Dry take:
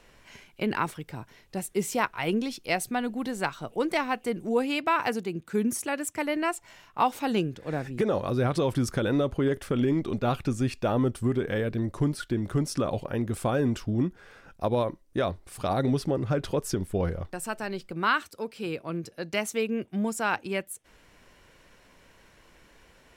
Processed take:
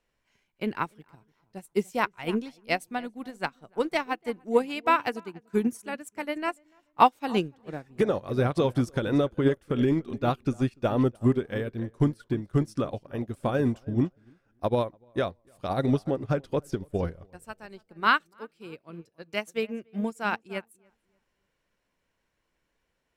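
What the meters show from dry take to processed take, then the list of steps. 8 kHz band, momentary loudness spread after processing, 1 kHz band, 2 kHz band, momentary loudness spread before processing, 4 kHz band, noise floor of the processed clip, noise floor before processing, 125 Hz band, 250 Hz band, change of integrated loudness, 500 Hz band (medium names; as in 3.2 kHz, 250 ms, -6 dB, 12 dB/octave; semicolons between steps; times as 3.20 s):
under -10 dB, 15 LU, +1.5 dB, -0.5 dB, 8 LU, -1.5 dB, -78 dBFS, -59 dBFS, -0.5 dB, -0.5 dB, +0.5 dB, 0.0 dB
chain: filtered feedback delay 292 ms, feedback 32%, low-pass 1.9 kHz, level -13 dB; upward expansion 2.5:1, over -38 dBFS; trim +7 dB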